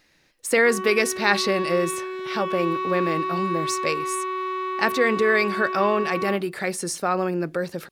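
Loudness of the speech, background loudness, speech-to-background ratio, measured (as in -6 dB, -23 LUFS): -23.5 LUFS, -28.5 LUFS, 5.0 dB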